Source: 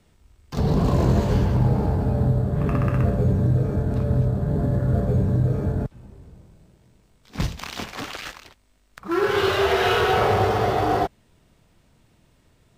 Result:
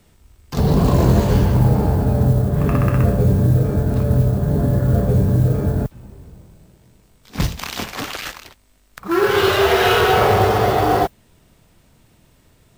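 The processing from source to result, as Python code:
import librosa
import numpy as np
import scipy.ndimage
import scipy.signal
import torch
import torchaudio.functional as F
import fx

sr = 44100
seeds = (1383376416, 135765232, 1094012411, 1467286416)

y = fx.mod_noise(x, sr, seeds[0], snr_db=35)
y = fx.high_shelf(y, sr, hz=11000.0, db=11.0)
y = F.gain(torch.from_numpy(y), 5.0).numpy()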